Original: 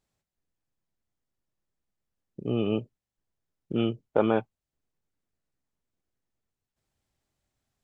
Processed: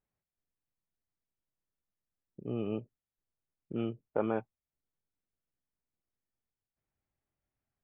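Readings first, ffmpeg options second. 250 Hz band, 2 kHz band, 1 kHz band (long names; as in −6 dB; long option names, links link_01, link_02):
−8.0 dB, −9.0 dB, −8.0 dB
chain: -af "lowpass=frequency=2500:width=0.5412,lowpass=frequency=2500:width=1.3066,volume=-8dB"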